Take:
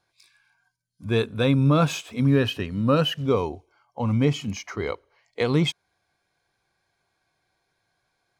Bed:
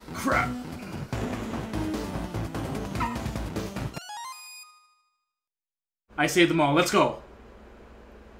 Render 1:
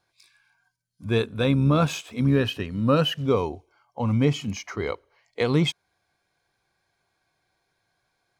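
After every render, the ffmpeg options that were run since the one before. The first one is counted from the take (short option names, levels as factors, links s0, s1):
-filter_complex "[0:a]asettb=1/sr,asplit=3[s0][s1][s2];[s0]atrim=end=1.184[s3];[s1]atrim=start=1.18:end=2.82,asetpts=PTS-STARTPTS,afade=t=in:d=0.004:c=qsin,afade=t=out:st=1.636:d=0.004:c=qsin,tremolo=f=74:d=0.261[s4];[s2]atrim=start=2.816[s5];[s3][s4]acrossfade=d=0.004:c1=hsin:c2=qsin[s6];[s6][s5]acrossfade=d=0.004:c1=qsin:c2=hsin"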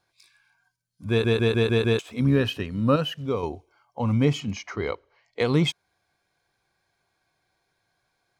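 -filter_complex "[0:a]asettb=1/sr,asplit=3[s0][s1][s2];[s0]atrim=end=4.404[s3];[s1]atrim=start=4.4:end=5.4,asetpts=PTS-STARTPTS,afade=t=in:d=0.004:c=qsin,afade=t=out:st=0.996:d=0.004:c=qsin,lowpass=5900[s4];[s2]atrim=start=5.396[s5];[s3][s4]acrossfade=d=0.004:c1=hsin:c2=qsin[s6];[s6][s5]acrossfade=d=0.004:c1=qsin:c2=hsin,asplit=9[s7][s8][s9][s10][s11][s12][s13][s14][s15];[s7]atrim=end=1.242[s16];[s8]atrim=start=1.088:end=1.242[s17];[s9]atrim=start=1.088:end=1.242[s18];[s10]atrim=start=1.088:end=1.242[s19];[s11]atrim=start=1.088:end=1.242[s20];[s12]atrim=start=1.088:end=1.242[s21];[s13]atrim=start=1.988:end=2.962[s22];[s14]atrim=start=2.958:end=3.432,asetpts=PTS-STARTPTS,volume=0.562[s23];[s15]atrim=start=3.428[s24];[s16][s17]acrossfade=d=0.004:c1=hsin:c2=hsin[s25];[s25][s18]acrossfade=d=0.004:c1=hsin:c2=hsin[s26];[s26][s19]acrossfade=d=0.004:c1=hsin:c2=hsin[s27];[s27][s20]acrossfade=d=0.004:c1=hsin:c2=hsin[s28];[s28][s21]acrossfade=d=0.004:c1=hsin:c2=hsin[s29];[s29][s22]acrossfade=d=0.004:c1=hsin:c2=hsin[s30];[s30][s23]acrossfade=d=0.004:c1=hsin:c2=hsin[s31];[s31][s24]acrossfade=d=0.004:c1=hsin:c2=hsin"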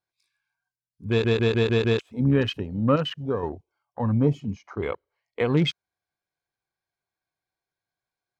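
-af "afwtdn=0.02"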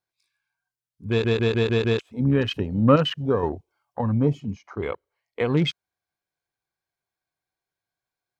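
-filter_complex "[0:a]asplit=3[s0][s1][s2];[s0]atrim=end=2.512[s3];[s1]atrim=start=2.508:end=4.012,asetpts=PTS-STARTPTS,volume=1.68[s4];[s2]atrim=start=4.008[s5];[s3][s4]acrossfade=d=0.004:c1=hsin:c2=hsin[s6];[s6][s5]acrossfade=d=0.004:c1=hsin:c2=hsin"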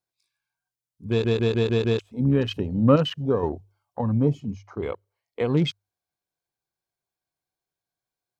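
-af "equalizer=f=1800:w=0.88:g=-6,bandreject=f=50:t=h:w=6,bandreject=f=100:t=h:w=6"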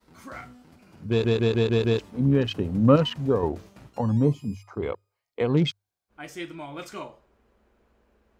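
-filter_complex "[1:a]volume=0.158[s0];[0:a][s0]amix=inputs=2:normalize=0"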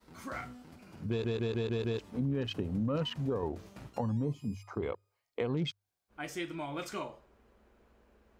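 -af "alimiter=limit=0.188:level=0:latency=1:release=11,acompressor=threshold=0.02:ratio=2.5"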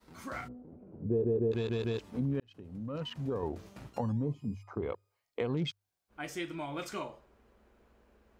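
-filter_complex "[0:a]asplit=3[s0][s1][s2];[s0]afade=t=out:st=0.47:d=0.02[s3];[s1]lowpass=f=470:t=q:w=1.9,afade=t=in:st=0.47:d=0.02,afade=t=out:st=1.51:d=0.02[s4];[s2]afade=t=in:st=1.51:d=0.02[s5];[s3][s4][s5]amix=inputs=3:normalize=0,asettb=1/sr,asplit=3[s6][s7][s8];[s6]atrim=end=4.124[s9];[s7]atrim=start=4.12:end=4.9,asetpts=PTS-STARTPTS,afade=t=in:d=0.004:c=qsin,afade=t=out:st=0.776:d=0.004:c=qsin,highshelf=f=2400:g=-11[s10];[s8]atrim=start=4.896[s11];[s9][s10]acrossfade=d=0.004:c1=hsin:c2=qsin[s12];[s12][s11]acrossfade=d=0.004:c1=qsin:c2=hsin,asplit=2[s13][s14];[s13]atrim=end=2.4,asetpts=PTS-STARTPTS,afade=t=out:st=2.396:d=0.004:c=hsin[s15];[s14]atrim=start=2.4,asetpts=PTS-STARTPTS,afade=t=in:d=1.1[s16];[s15][s16]concat=n=2:v=0:a=1"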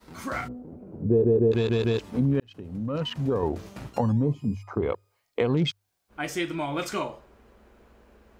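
-af "volume=2.82"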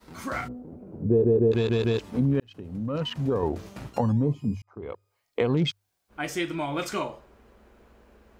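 -filter_complex "[0:a]asplit=2[s0][s1];[s0]atrim=end=4.62,asetpts=PTS-STARTPTS,afade=t=out:st=4.616:d=0.004:c=hsin[s2];[s1]atrim=start=4.62,asetpts=PTS-STARTPTS,afade=t=in:d=0.77[s3];[s2][s3]concat=n=2:v=0:a=1"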